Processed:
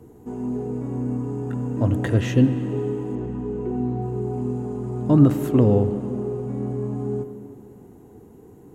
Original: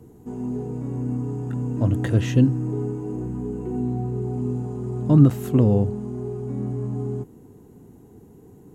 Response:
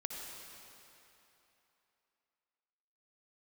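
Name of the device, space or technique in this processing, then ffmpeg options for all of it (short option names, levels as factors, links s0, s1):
filtered reverb send: -filter_complex "[0:a]asplit=2[s0][s1];[s1]highpass=f=150:w=0.5412,highpass=f=150:w=1.3066,lowpass=3300[s2];[1:a]atrim=start_sample=2205[s3];[s2][s3]afir=irnorm=-1:irlink=0,volume=0.596[s4];[s0][s4]amix=inputs=2:normalize=0,asettb=1/sr,asplit=3[s5][s6][s7];[s5]atrim=end=3.154[s8];[s6]atrim=start=3.15:end=4.02,asetpts=PTS-STARTPTS,afade=t=in:d=0.004:c=qsin,afade=t=out:st=0.866:d=0.004:c=qsin,lowpass=5300[s9];[s7]atrim=start=4.016[s10];[s8][s9]acrossfade=d=0.004:c1=hsin:c2=qsin[s11];[s11][s10]acrossfade=d=0.004:c1=qsin:c2=hsin"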